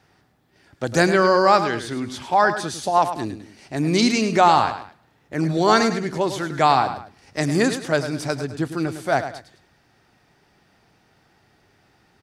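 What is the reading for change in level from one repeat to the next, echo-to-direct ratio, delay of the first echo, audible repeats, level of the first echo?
−9.0 dB, −10.0 dB, 105 ms, 2, −10.5 dB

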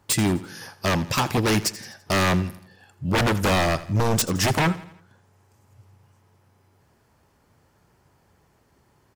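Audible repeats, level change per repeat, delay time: 3, −6.5 dB, 84 ms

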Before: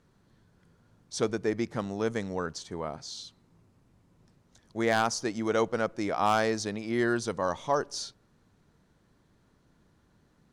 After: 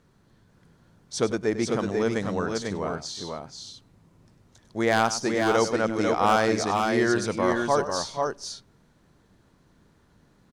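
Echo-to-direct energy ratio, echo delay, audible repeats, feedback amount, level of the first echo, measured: −3.0 dB, 99 ms, 3, repeats not evenly spaced, −12.5 dB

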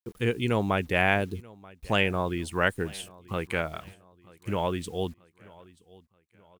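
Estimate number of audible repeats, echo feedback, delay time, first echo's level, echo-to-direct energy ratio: 2, 45%, 933 ms, −23.0 dB, −22.0 dB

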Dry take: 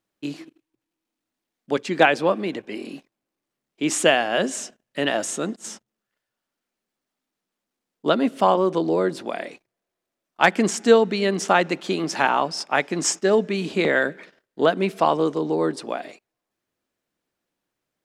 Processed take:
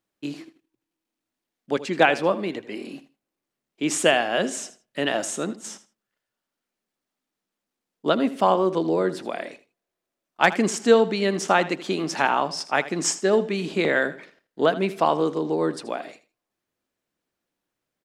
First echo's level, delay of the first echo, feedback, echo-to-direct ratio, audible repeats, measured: −15.5 dB, 80 ms, 19%, −15.5 dB, 2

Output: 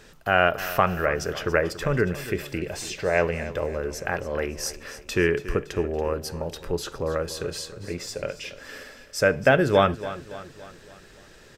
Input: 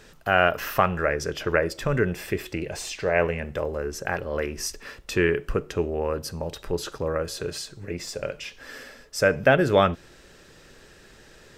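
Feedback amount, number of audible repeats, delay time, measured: 50%, 4, 282 ms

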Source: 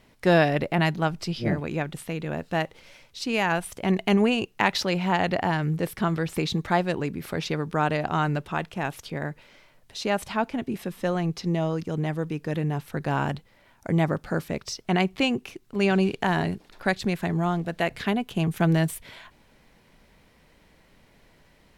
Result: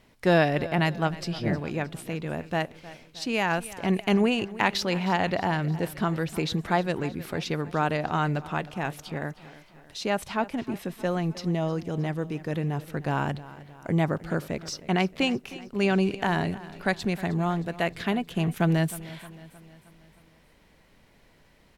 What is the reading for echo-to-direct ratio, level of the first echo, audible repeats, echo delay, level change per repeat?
−16.0 dB, −17.5 dB, 4, 311 ms, −5.5 dB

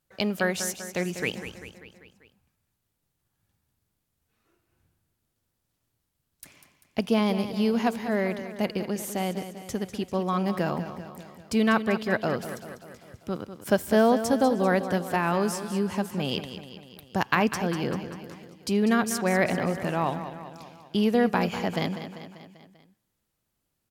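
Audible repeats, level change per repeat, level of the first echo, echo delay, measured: 5, −4.5 dB, −11.0 dB, 196 ms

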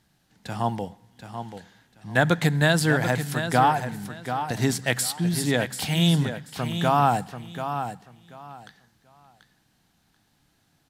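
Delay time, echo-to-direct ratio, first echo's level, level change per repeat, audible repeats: 736 ms, −9.0 dB, −9.0 dB, −13.5 dB, 2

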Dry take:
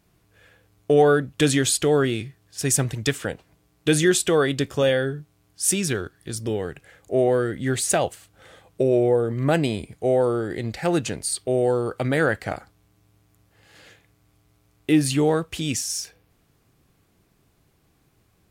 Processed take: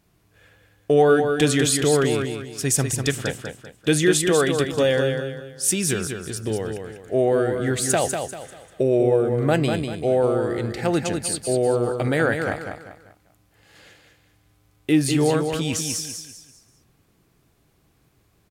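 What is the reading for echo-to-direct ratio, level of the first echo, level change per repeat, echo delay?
−5.5 dB, −6.0 dB, −9.0 dB, 196 ms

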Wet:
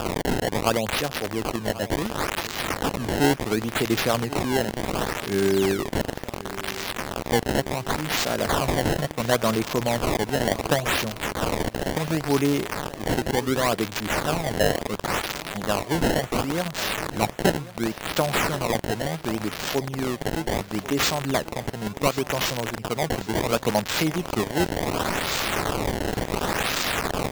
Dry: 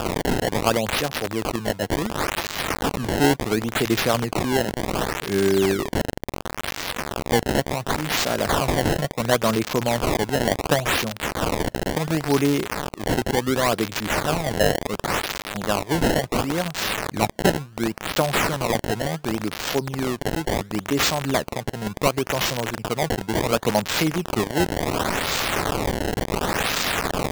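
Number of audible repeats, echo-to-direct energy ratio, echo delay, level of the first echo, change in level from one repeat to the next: 3, −15.5 dB, 1,089 ms, −17.0 dB, −5.5 dB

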